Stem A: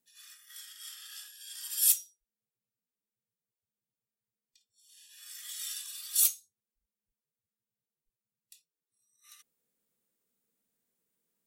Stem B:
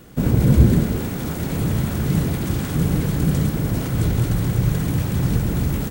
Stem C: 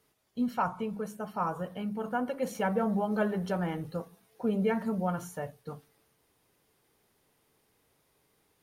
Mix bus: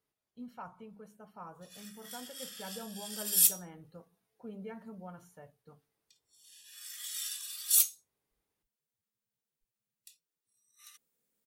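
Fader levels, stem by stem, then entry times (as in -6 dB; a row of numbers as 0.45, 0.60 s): +0.5 dB, off, -16.0 dB; 1.55 s, off, 0.00 s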